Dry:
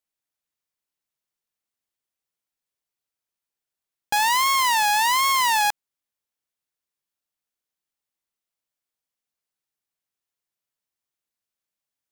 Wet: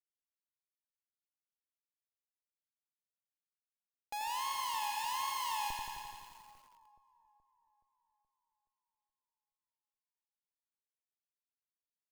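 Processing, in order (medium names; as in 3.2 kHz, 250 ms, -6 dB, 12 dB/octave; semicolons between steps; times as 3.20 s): tone controls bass -11 dB, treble -2 dB; band-stop 7.5 kHz, Q 10; crossover distortion -58.5 dBFS; power-law waveshaper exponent 2; Schmitt trigger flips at -43 dBFS; on a send: two-band feedback delay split 1.2 kHz, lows 424 ms, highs 202 ms, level -15 dB; on the sum: gated-style reverb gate 320 ms rising, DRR 10.5 dB; bit-crushed delay 87 ms, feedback 80%, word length 9-bit, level -4.5 dB; trim -6.5 dB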